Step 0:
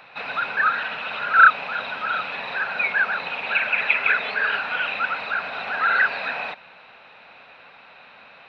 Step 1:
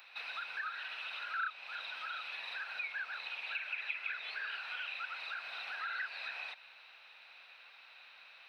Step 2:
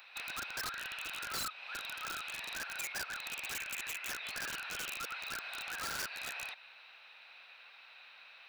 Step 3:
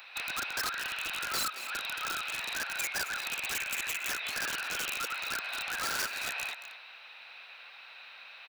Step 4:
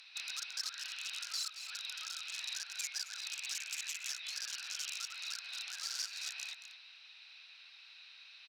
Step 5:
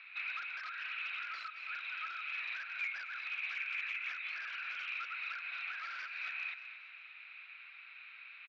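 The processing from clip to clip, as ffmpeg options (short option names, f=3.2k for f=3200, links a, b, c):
-af "aderivative,acompressor=threshold=-43dB:ratio=2.5,volume=1.5dB"
-af "aeval=exprs='(mod(53.1*val(0)+1,2)-1)/53.1':c=same,volume=1dB"
-filter_complex "[0:a]acrossover=split=210[a][b];[a]alimiter=level_in=31dB:limit=-24dB:level=0:latency=1:release=258,volume=-31dB[c];[b]aecho=1:1:223:0.251[d];[c][d]amix=inputs=2:normalize=0,volume=6dB"
-af "bandpass=f=5.3k:t=q:w=2.3:csg=0,alimiter=level_in=8dB:limit=-24dB:level=0:latency=1:release=284,volume=-8dB,volume=4dB"
-af "highpass=230,equalizer=f=250:t=q:w=4:g=-5,equalizer=f=490:t=q:w=4:g=-9,equalizer=f=860:t=q:w=4:g=-6,equalizer=f=1.3k:t=q:w=4:g=6,equalizer=f=2.3k:t=q:w=4:g=9,lowpass=f=2.4k:w=0.5412,lowpass=f=2.4k:w=1.3066,aecho=1:1:587:0.0891,volume=5dB"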